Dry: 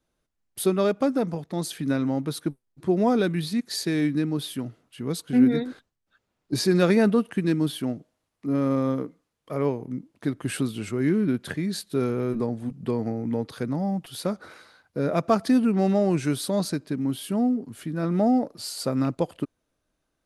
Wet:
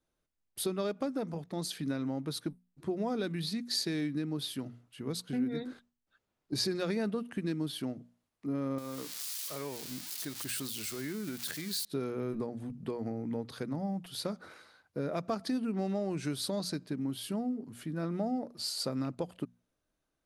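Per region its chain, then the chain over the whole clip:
8.78–11.85 switching spikes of -25 dBFS + tilt shelf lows -5 dB, about 790 Hz + compressor 4:1, threshold -28 dBFS
whole clip: compressor 3:1, threshold -25 dBFS; dynamic EQ 4500 Hz, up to +6 dB, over -50 dBFS, Q 1.7; notches 60/120/180/240 Hz; gain -6 dB

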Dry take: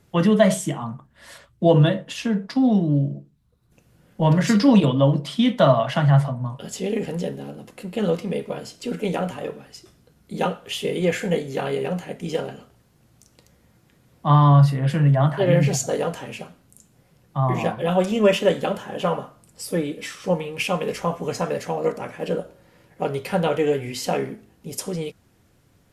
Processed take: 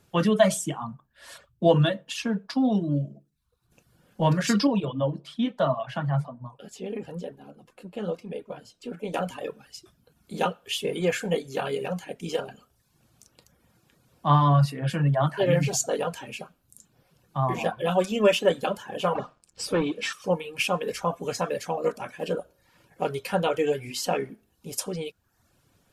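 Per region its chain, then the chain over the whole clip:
4.67–9.14 high shelf 2600 Hz -9 dB + flange 1.1 Hz, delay 1 ms, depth 9.6 ms, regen +80%
19.15–20.13 notches 60/120/180/240 Hz + sample leveller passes 2 + air absorption 78 m
whole clip: notch 2000 Hz, Q 8.4; reverb removal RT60 0.64 s; low shelf 490 Hz -5.5 dB

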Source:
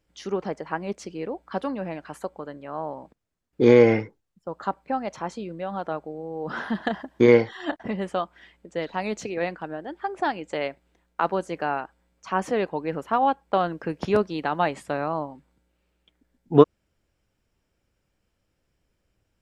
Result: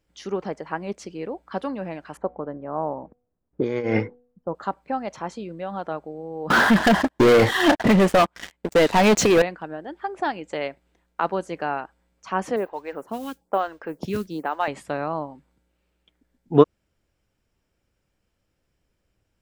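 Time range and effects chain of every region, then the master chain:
2.17–4.55 low-pass opened by the level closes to 780 Hz, open at -11.5 dBFS + de-hum 244.4 Hz, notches 3 + negative-ratio compressor -23 dBFS
6.5–9.42 compressor 4:1, threshold -19 dBFS + sample leveller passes 5
12.56–14.68 modulation noise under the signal 29 dB + photocell phaser 1.1 Hz
whole clip: dry

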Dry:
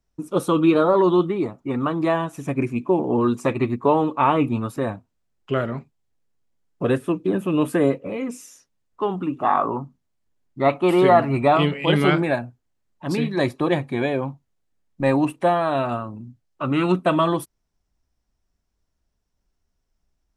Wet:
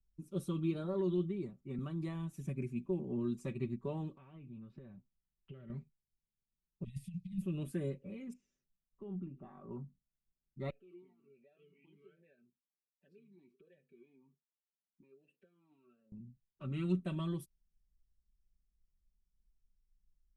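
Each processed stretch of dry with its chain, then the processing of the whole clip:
1.78–2.86 high shelf 10000 Hz +4.5 dB + three-band squash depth 40%
4.17–5.7 LPF 3400 Hz 24 dB/oct + compressor 8:1, threshold -31 dBFS
6.84–7.42 bell 4700 Hz +8.5 dB 0.28 oct + negative-ratio compressor -24 dBFS, ratio -0.5 + brick-wall FIR band-stop 220–1800 Hz
8.33–9.71 compressor 3:1, threshold -23 dBFS + tape spacing loss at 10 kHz 38 dB
10.7–16.12 comb 4.5 ms, depth 51% + compressor 10:1, threshold -30 dBFS + vowel sweep e-u 1.3 Hz
whole clip: passive tone stack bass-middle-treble 10-0-1; comb 5.2 ms, depth 68%; gain +1 dB

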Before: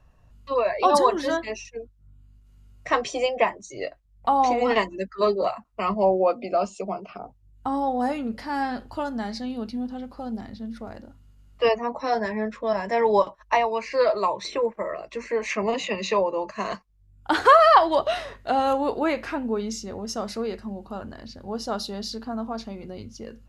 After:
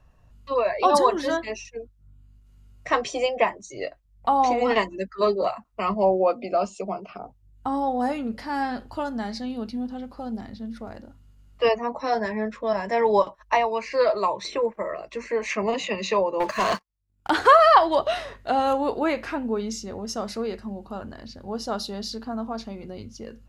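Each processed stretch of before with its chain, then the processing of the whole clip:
16.4–17.3 gate -55 dBFS, range -7 dB + low shelf 270 Hz -8.5 dB + sample leveller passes 3
whole clip: dry

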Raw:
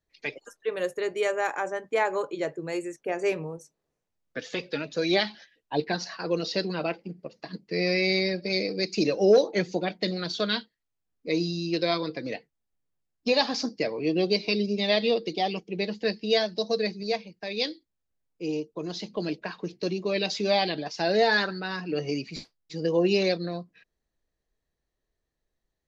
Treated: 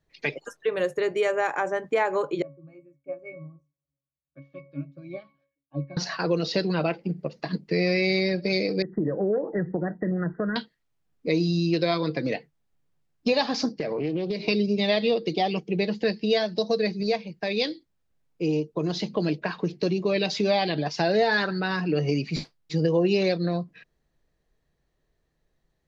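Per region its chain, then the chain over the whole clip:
2.42–5.97 octave resonator C#, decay 0.29 s + upward expander, over -51 dBFS
8.82–10.56 bell 840 Hz -6.5 dB 2 oct + compressor 2:1, threshold -30 dBFS + brick-wall FIR low-pass 2000 Hz
13.72–14.48 high shelf 4100 Hz -7.5 dB + compressor 12:1, threshold -31 dBFS + Doppler distortion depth 0.13 ms
whole clip: high shelf 5400 Hz -9 dB; compressor 2:1, threshold -34 dBFS; bell 150 Hz +7.5 dB 0.37 oct; gain +8.5 dB

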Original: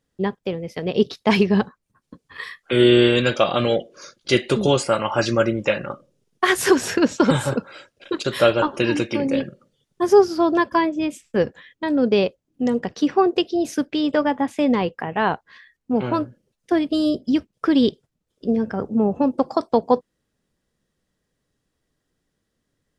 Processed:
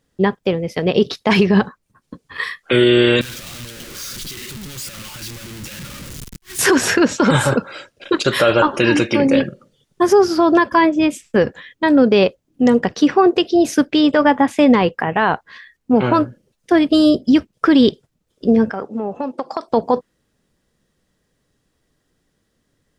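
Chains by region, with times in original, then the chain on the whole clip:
3.21–6.59 infinite clipping + passive tone stack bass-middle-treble 6-0-2 + flipped gate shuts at -26 dBFS, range -35 dB
18.7–19.68 HPF 800 Hz 6 dB/oct + high shelf 7600 Hz -9.5 dB + compressor 4:1, threshold -26 dBFS
whole clip: dynamic EQ 1500 Hz, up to +4 dB, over -33 dBFS, Q 0.93; limiter -11.5 dBFS; gain +7.5 dB

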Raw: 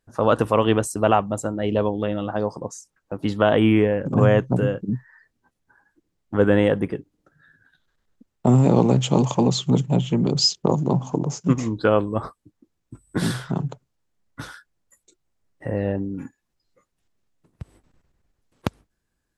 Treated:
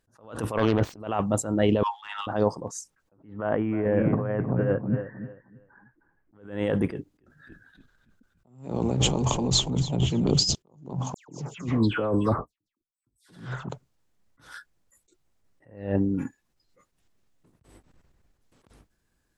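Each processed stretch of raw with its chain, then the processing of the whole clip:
0.57–1 self-modulated delay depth 0.37 ms + air absorption 260 m + transient shaper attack -11 dB, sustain +6 dB
1.83–2.27 steep high-pass 830 Hz 96 dB/oct + overdrive pedal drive 10 dB, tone 3400 Hz, clips at -22 dBFS
3.13–6.35 inverse Chebyshev low-pass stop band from 9800 Hz, stop band 80 dB + feedback echo 0.312 s, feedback 23%, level -14 dB
6.9–10.55 frequency-shifting echo 0.284 s, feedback 52%, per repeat -51 Hz, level -15 dB + dynamic EQ 9600 Hz, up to +3 dB, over -43 dBFS, Q 1.2
11.14–13.69 expander -52 dBFS + dispersion lows, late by 0.144 s, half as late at 2400 Hz
whole clip: negative-ratio compressor -23 dBFS, ratio -1; attack slew limiter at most 120 dB/s

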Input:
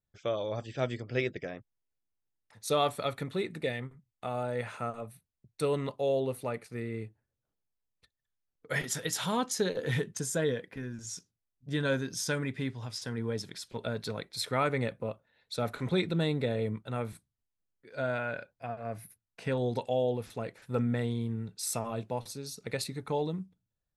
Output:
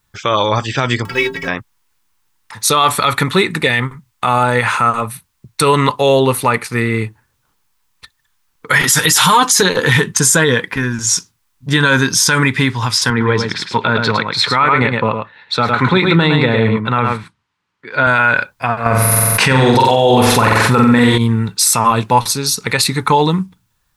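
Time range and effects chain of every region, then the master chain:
1.05–1.48 G.711 law mismatch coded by mu + upward compressor, threshold -30 dBFS + metallic resonator 81 Hz, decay 0.36 s, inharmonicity 0.03
8.87–9.63 high shelf 7400 Hz +8 dB + comb 6.6 ms, depth 84%
13.1–18.07 BPF 100–3300 Hz + echo 0.107 s -6.5 dB
18.86–21.18 flutter echo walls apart 7.8 m, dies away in 0.71 s + fast leveller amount 70%
whole clip: resonant low shelf 790 Hz -6 dB, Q 3; maximiser +27.5 dB; gain -1 dB

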